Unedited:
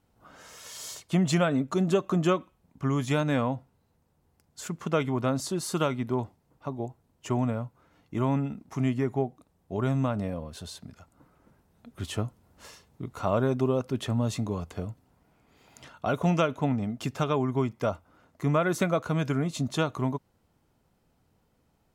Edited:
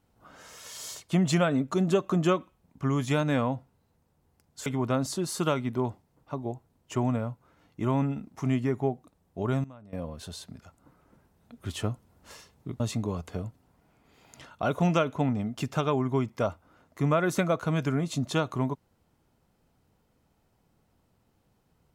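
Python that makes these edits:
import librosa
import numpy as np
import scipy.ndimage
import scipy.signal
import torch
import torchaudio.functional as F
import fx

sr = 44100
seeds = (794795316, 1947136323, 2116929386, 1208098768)

y = fx.edit(x, sr, fx.cut(start_s=4.66, length_s=0.34),
    fx.fade_down_up(start_s=9.74, length_s=0.77, db=-20.5, fade_s=0.24, curve='log'),
    fx.cut(start_s=13.14, length_s=1.09), tone=tone)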